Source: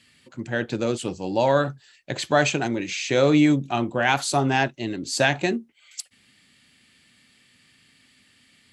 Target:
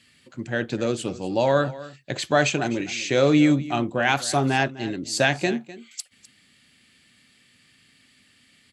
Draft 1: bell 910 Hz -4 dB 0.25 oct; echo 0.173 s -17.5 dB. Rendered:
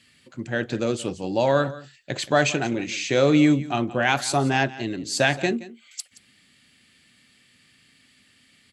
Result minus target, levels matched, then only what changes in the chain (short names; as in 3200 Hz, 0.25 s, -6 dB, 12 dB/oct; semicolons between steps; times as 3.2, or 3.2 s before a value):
echo 80 ms early
change: echo 0.253 s -17.5 dB